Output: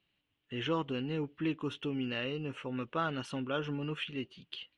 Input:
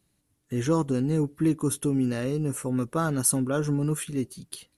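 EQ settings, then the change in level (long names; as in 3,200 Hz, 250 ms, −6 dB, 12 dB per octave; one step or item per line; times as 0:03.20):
transistor ladder low-pass 3,200 Hz, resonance 70%
low-shelf EQ 360 Hz −9.5 dB
+7.0 dB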